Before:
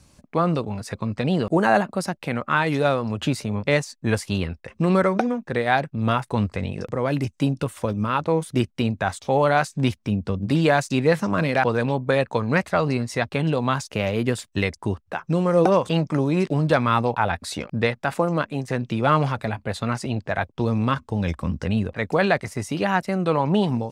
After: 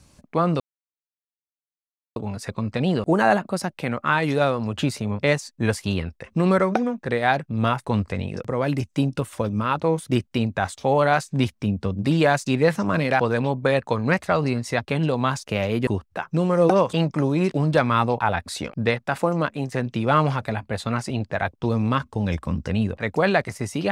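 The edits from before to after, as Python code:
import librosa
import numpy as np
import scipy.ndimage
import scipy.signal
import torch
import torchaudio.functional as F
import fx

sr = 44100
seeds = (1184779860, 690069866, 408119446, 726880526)

y = fx.edit(x, sr, fx.insert_silence(at_s=0.6, length_s=1.56),
    fx.cut(start_s=14.31, length_s=0.52), tone=tone)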